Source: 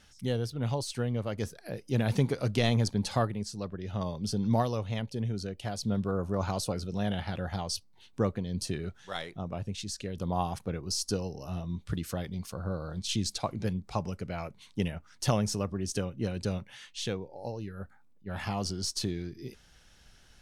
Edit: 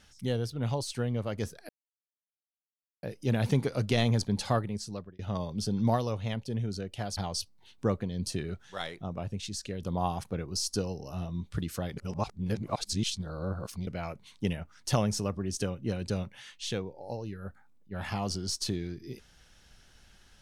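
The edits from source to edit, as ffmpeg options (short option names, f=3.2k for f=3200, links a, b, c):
-filter_complex "[0:a]asplit=6[a][b][c][d][e][f];[a]atrim=end=1.69,asetpts=PTS-STARTPTS,afade=t=out:st=1.686:d=0.004:c=hsin,apad=pad_dur=1.34[g];[b]atrim=start=1.69:end=3.85,asetpts=PTS-STARTPTS,afade=t=in:d=0.004:c=hsin,afade=t=out:st=1.87:d=0.29[h];[c]atrim=start=3.85:end=5.832,asetpts=PTS-STARTPTS,afade=t=in:d=0.004:c=hsin[i];[d]atrim=start=7.518:end=12.322[j];[e]atrim=start=12.318:end=14.222,asetpts=PTS-STARTPTS,areverse[k];[f]atrim=start=14.218[l];[g][h][i]concat=n=3:v=0:a=1[m];[m][j]acrossfade=d=0.004:c1=hsin:c2=hsin[n];[n][k]acrossfade=d=0.004:c1=hsin:c2=hsin[o];[o][l]acrossfade=d=0.004:c1=hsin:c2=hsin"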